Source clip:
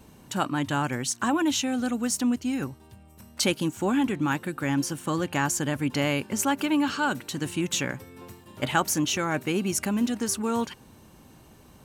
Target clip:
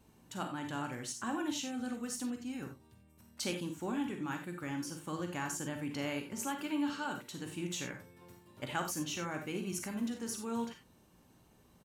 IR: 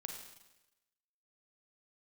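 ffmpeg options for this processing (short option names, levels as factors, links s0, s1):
-filter_complex "[0:a]asplit=2[s0][s1];[s1]adelay=17,volume=0.237[s2];[s0][s2]amix=inputs=2:normalize=0[s3];[1:a]atrim=start_sample=2205,atrim=end_sample=4410[s4];[s3][s4]afir=irnorm=-1:irlink=0,volume=0.355"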